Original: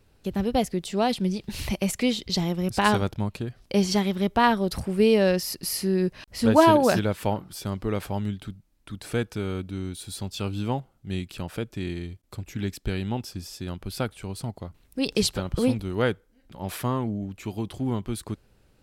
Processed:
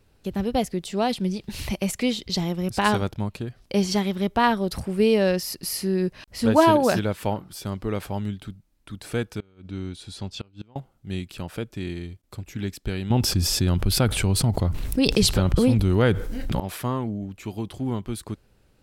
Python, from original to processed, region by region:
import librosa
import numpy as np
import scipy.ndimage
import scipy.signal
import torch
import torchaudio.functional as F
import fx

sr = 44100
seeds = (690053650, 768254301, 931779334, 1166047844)

y = fx.chain(x, sr, fx.lowpass(hz=6100.0, slope=12),
    fx.gate_flip(shuts_db=-21.0, range_db=-28), at=(9.39, 10.76))
y = fx.chain(y, sr, fx.low_shelf(hz=150.0, db=9.5),
    fx.env_flatten(amount_pct=70), at=(13.1, 16.6))